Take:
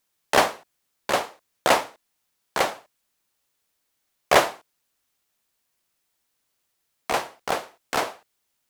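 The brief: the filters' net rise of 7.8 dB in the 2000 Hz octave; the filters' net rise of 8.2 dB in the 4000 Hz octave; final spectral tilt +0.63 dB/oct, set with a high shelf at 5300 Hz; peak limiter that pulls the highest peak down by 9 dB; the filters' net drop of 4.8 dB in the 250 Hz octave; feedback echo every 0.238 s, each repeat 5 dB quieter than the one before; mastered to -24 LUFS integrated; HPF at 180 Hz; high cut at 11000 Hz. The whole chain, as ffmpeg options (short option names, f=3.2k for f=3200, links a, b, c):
-af "highpass=180,lowpass=11k,equalizer=f=250:t=o:g=-6,equalizer=f=2k:t=o:g=7.5,equalizer=f=4k:t=o:g=5.5,highshelf=f=5.3k:g=6,alimiter=limit=-5.5dB:level=0:latency=1,aecho=1:1:238|476|714|952|1190|1428|1666:0.562|0.315|0.176|0.0988|0.0553|0.031|0.0173,volume=-1dB"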